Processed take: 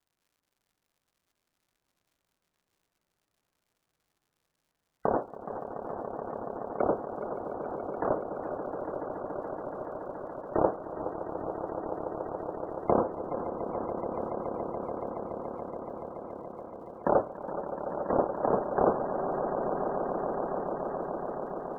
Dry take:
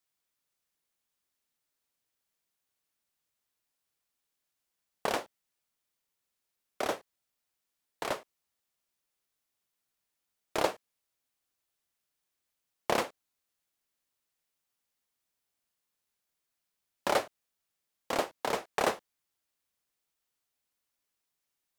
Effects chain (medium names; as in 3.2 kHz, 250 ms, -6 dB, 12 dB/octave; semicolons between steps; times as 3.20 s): low-pass 1.7 kHz 12 dB/octave; bass shelf 450 Hz +6.5 dB; low-pass that closes with the level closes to 1.1 kHz, closed at -31 dBFS; in parallel at -2.5 dB: peak limiter -22 dBFS, peak gain reduction 11.5 dB; on the sum: echo with a slow build-up 142 ms, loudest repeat 8, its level -11.5 dB; loudest bins only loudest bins 64; crackle 170 per s -61 dBFS; wow and flutter 26 cents; modulated delay 417 ms, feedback 68%, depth 115 cents, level -13 dB